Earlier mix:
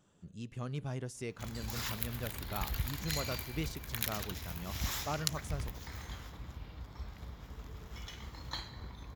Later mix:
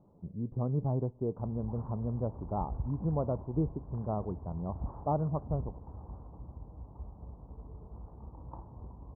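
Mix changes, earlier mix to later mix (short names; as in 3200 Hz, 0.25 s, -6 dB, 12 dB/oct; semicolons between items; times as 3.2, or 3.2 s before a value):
speech +8.0 dB; master: add steep low-pass 1000 Hz 48 dB/oct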